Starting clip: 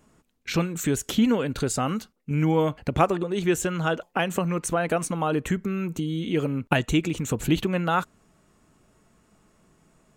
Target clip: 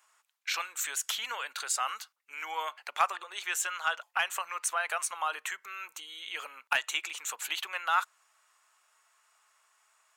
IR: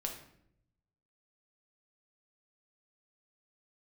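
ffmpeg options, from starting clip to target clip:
-af "highpass=f=950:w=0.5412,highpass=f=950:w=1.3066,asoftclip=type=tanh:threshold=-12.5dB"

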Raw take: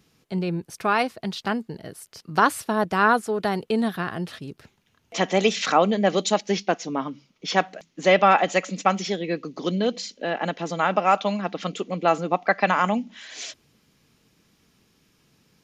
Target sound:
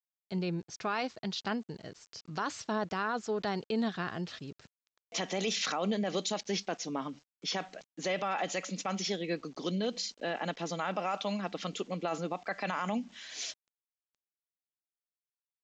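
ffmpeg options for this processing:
-af "equalizer=f=5.2k:w=0.8:g=5.5,alimiter=limit=-15.5dB:level=0:latency=1:release=32,aresample=16000,aeval=exprs='val(0)*gte(abs(val(0)),0.00335)':c=same,aresample=44100,volume=-7.5dB"

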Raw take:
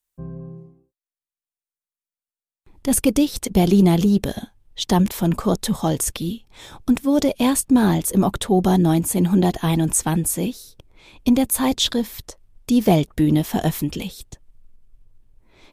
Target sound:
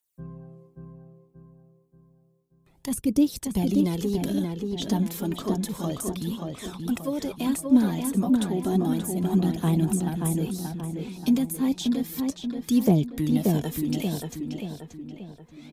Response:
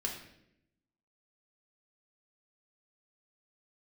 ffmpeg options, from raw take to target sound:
-filter_complex "[0:a]highpass=f=190:p=1,highshelf=f=5.1k:g=6,acrossover=split=340[a][b];[b]acompressor=threshold=-30dB:ratio=6[c];[a][c]amix=inputs=2:normalize=0,aphaser=in_gain=1:out_gain=1:delay=4.7:decay=0.54:speed=0.31:type=triangular,asplit=2[d][e];[e]adelay=581,lowpass=f=2.8k:p=1,volume=-3.5dB,asplit=2[f][g];[g]adelay=581,lowpass=f=2.8k:p=1,volume=0.47,asplit=2[h][i];[i]adelay=581,lowpass=f=2.8k:p=1,volume=0.47,asplit=2[j][k];[k]adelay=581,lowpass=f=2.8k:p=1,volume=0.47,asplit=2[l][m];[m]adelay=581,lowpass=f=2.8k:p=1,volume=0.47,asplit=2[n][o];[o]adelay=581,lowpass=f=2.8k:p=1,volume=0.47[p];[d][f][h][j][l][n][p]amix=inputs=7:normalize=0,volume=-5dB"

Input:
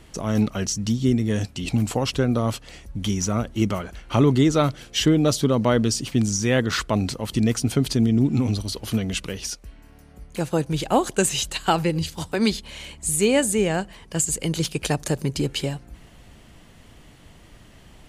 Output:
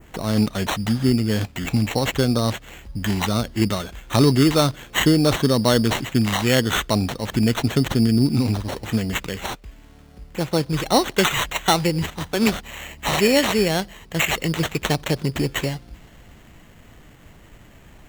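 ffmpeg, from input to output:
-af "acrusher=samples=9:mix=1:aa=0.000001,adynamicequalizer=threshold=0.00891:dfrequency=4000:dqfactor=1.1:tfrequency=4000:tqfactor=1.1:attack=5:release=100:ratio=0.375:range=3:mode=boostabove:tftype=bell,volume=1.5dB"

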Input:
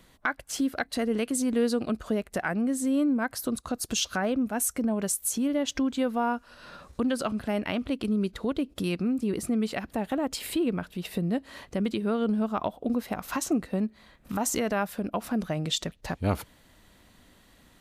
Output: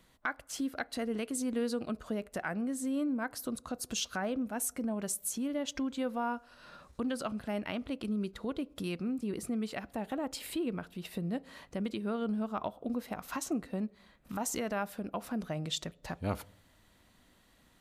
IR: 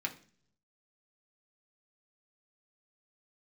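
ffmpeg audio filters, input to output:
-filter_complex "[0:a]asplit=2[a][b];[b]equalizer=f=540:t=o:w=0.85:g=8[c];[1:a]atrim=start_sample=2205,asetrate=24696,aresample=44100[d];[c][d]afir=irnorm=-1:irlink=0,volume=-23dB[e];[a][e]amix=inputs=2:normalize=0,volume=-7.5dB"

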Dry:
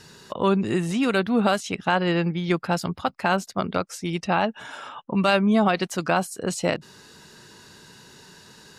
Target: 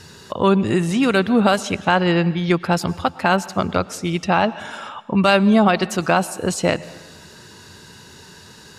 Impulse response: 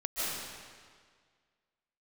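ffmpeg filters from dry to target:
-filter_complex "[0:a]equalizer=f=86:w=2.7:g=9,asplit=2[a][b];[1:a]atrim=start_sample=2205,asetrate=61740,aresample=44100[c];[b][c]afir=irnorm=-1:irlink=0,volume=-21dB[d];[a][d]amix=inputs=2:normalize=0,volume=4.5dB"

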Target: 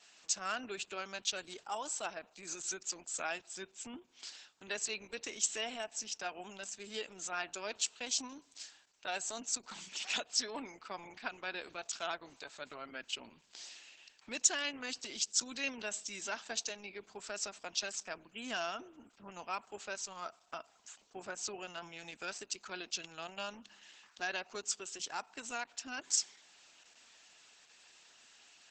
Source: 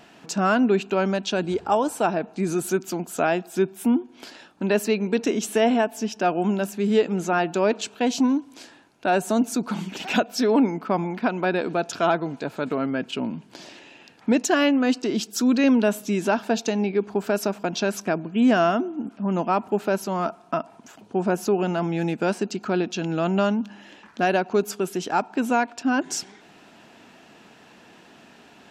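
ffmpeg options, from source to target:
-af "aderivative,volume=1dB" -ar 48000 -c:a libopus -b:a 10k

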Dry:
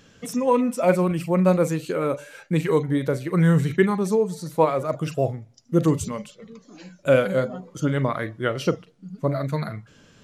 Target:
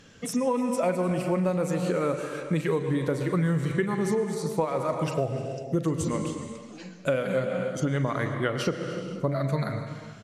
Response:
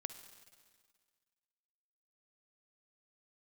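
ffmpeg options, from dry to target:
-filter_complex "[1:a]atrim=start_sample=2205,afade=t=out:st=0.32:d=0.01,atrim=end_sample=14553,asetrate=22050,aresample=44100[a];[0:a][a]afir=irnorm=-1:irlink=0,acompressor=threshold=-22dB:ratio=10,equalizer=f=1.9k:t=o:w=0.26:g=2,aecho=1:1:305:0.0891"

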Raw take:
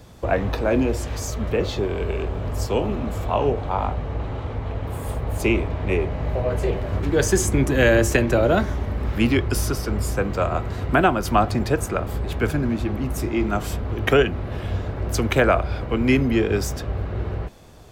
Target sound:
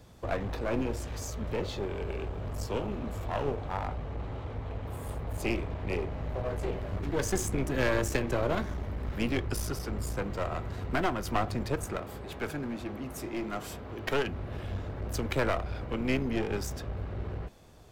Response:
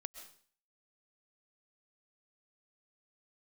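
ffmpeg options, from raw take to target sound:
-filter_complex "[0:a]asettb=1/sr,asplit=3[a][b][c];[a]atrim=end=11.974[d];[b]atrim=start=11.97:end=14.25,asetpts=PTS-STARTPTS,afade=t=in:d=0.004:c=qsin,afade=t=out:st=2.276:d=0.004:c=qsin,highpass=f=220:p=1[e];[c]atrim=start=14.246[f];[d][e]acrossfade=d=0.004:c1=hsin:c2=qsin[g];[g][f]acrossfade=d=0.004:c1=qsin:c2=hsin,aeval=exprs='clip(val(0),-1,0.0531)':c=same,volume=-8.5dB"

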